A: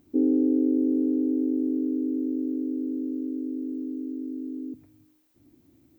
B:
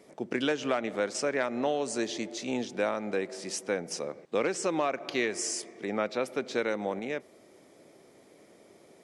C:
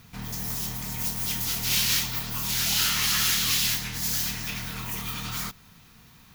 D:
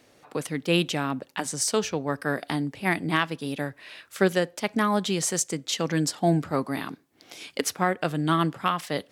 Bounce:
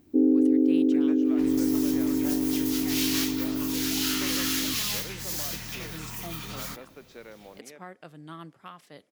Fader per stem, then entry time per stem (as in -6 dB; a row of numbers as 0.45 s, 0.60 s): +1.5 dB, -16.0 dB, -5.0 dB, -19.5 dB; 0.00 s, 0.60 s, 1.25 s, 0.00 s